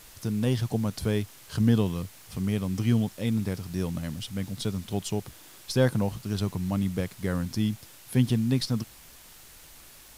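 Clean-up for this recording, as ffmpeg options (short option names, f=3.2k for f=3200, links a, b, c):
-af "adeclick=t=4,afftdn=nr=22:nf=-50"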